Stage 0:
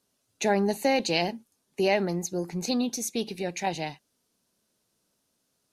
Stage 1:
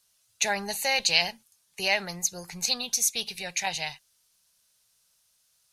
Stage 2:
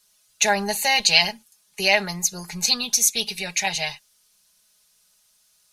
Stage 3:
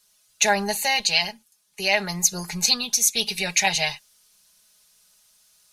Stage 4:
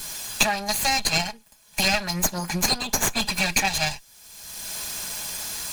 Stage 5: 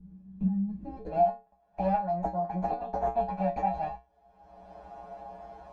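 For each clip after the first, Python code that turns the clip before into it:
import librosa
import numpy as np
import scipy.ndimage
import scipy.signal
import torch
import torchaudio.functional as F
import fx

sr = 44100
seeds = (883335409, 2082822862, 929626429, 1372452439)

y1 = fx.tone_stack(x, sr, knobs='10-0-10')
y1 = y1 * librosa.db_to_amplitude(9.0)
y2 = y1 + 0.69 * np.pad(y1, (int(4.8 * sr / 1000.0), 0))[:len(y1)]
y2 = y2 * librosa.db_to_amplitude(4.5)
y3 = fx.rider(y2, sr, range_db=10, speed_s=0.5)
y4 = fx.lower_of_two(y3, sr, delay_ms=1.2)
y4 = fx.band_squash(y4, sr, depth_pct=100)
y5 = fx.filter_sweep_lowpass(y4, sr, from_hz=190.0, to_hz=730.0, start_s=0.71, end_s=1.22, q=6.6)
y5 = fx.comb_fb(y5, sr, f0_hz=63.0, decay_s=0.23, harmonics='odd', damping=0.0, mix_pct=100)
y5 = y5 * librosa.db_to_amplitude(1.0)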